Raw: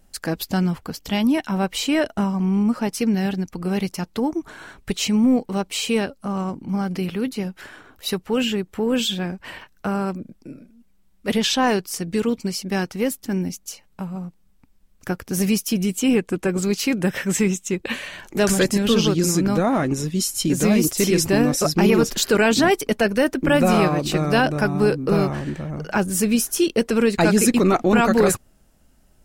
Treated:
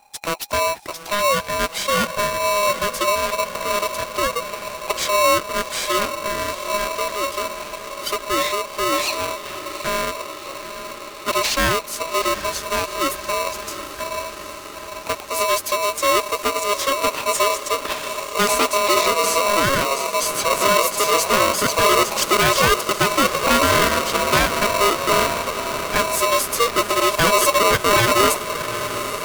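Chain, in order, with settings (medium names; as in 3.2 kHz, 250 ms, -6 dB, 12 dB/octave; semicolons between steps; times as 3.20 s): echo that smears into a reverb 805 ms, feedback 72%, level -11 dB; polarity switched at an audio rate 820 Hz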